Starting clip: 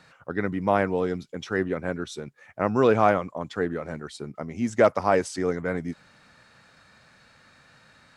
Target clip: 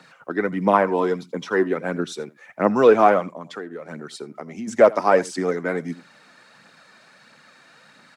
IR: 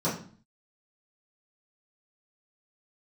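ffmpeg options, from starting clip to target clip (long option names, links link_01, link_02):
-filter_complex "[0:a]asettb=1/sr,asplit=3[link_01][link_02][link_03];[link_01]atrim=end=0.734[link_04];[link_02]atrim=start=0.73:end=1.67,asetpts=PTS-STARTPTS,afade=type=in:duration=0.004:curve=qsin,afade=type=out:start_time=0.936:duration=0.004:curve=qsin,equalizer=frequency=1000:width_type=o:width=0.31:gain=11[link_05];[link_03]atrim=start=1.666[link_06];[link_04][link_05]acrossfade=duration=0.004:curve1=hsin:curve2=qsin[link_07];[link_07][link_06]acrossfade=duration=0.004:curve1=qsin:curve2=hsin,acrossover=split=220|1900[link_08][link_09][link_10];[link_10]alimiter=level_in=5.5dB:limit=-24dB:level=0:latency=1:release=137,volume=-5.5dB[link_11];[link_08][link_09][link_11]amix=inputs=3:normalize=0,highpass=frequency=170:width=0.5412,highpass=frequency=170:width=1.3066,asplit=2[link_12][link_13];[link_13]aecho=0:1:82:0.0944[link_14];[link_12][link_14]amix=inputs=2:normalize=0,aphaser=in_gain=1:out_gain=1:delay=3.3:decay=0.39:speed=1.5:type=triangular,asplit=3[link_15][link_16][link_17];[link_15]afade=type=out:start_time=3.32:duration=0.02[link_18];[link_16]acompressor=threshold=-34dB:ratio=10,afade=type=in:start_time=3.32:duration=0.02,afade=type=out:start_time=4.67:duration=0.02[link_19];[link_17]afade=type=in:start_time=4.67:duration=0.02[link_20];[link_18][link_19][link_20]amix=inputs=3:normalize=0,volume=4dB"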